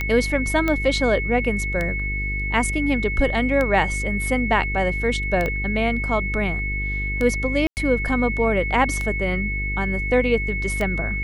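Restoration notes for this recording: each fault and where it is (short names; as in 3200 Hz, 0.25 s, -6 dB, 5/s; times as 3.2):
buzz 50 Hz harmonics 9 -27 dBFS
tick 33 1/3 rpm -12 dBFS
tone 2200 Hz -26 dBFS
0.68 pop -10 dBFS
5.46 pop -13 dBFS
7.67–7.77 gap 99 ms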